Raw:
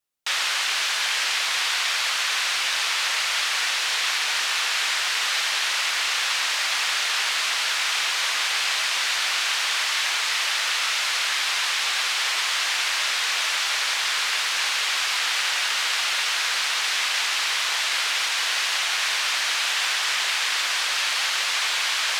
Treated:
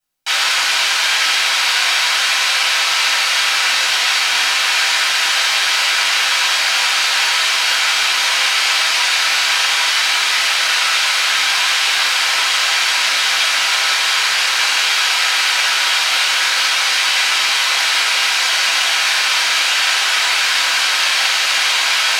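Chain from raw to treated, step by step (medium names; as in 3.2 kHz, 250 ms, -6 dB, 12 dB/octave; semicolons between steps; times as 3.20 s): reverberation RT60 0.50 s, pre-delay 6 ms, DRR -6.5 dB; trim -1 dB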